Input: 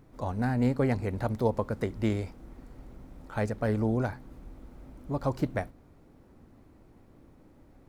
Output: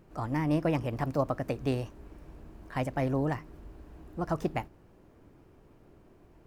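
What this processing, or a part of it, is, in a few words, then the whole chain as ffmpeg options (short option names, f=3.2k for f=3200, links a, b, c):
nightcore: -af "asetrate=53802,aresample=44100,volume=-1.5dB"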